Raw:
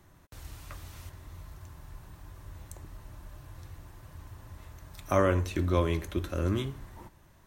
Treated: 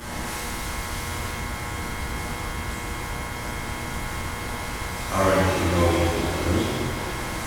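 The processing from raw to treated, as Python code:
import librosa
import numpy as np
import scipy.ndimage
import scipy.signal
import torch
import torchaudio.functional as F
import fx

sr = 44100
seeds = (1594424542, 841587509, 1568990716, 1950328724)

y = fx.delta_mod(x, sr, bps=64000, step_db=-31.5)
y = fx.dmg_buzz(y, sr, base_hz=120.0, harmonics=18, level_db=-43.0, tilt_db=0, odd_only=False)
y = fx.rev_shimmer(y, sr, seeds[0], rt60_s=1.5, semitones=7, shimmer_db=-8, drr_db=-11.5)
y = y * librosa.db_to_amplitude(-5.0)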